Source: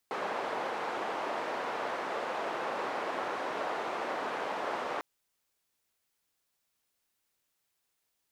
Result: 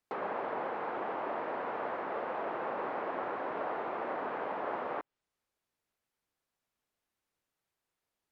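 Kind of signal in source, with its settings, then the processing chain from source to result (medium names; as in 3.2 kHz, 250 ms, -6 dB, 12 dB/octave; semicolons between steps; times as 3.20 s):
noise band 460–920 Hz, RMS -35 dBFS 4.90 s
low-pass that closes with the level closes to 2.6 kHz, closed at -34 dBFS; treble shelf 2.6 kHz -11.5 dB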